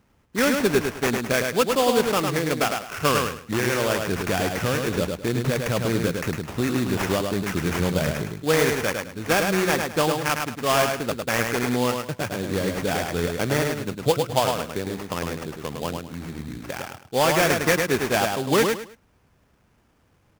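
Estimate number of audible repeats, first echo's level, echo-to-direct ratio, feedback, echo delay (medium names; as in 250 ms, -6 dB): 3, -4.5 dB, -4.0 dB, 25%, 105 ms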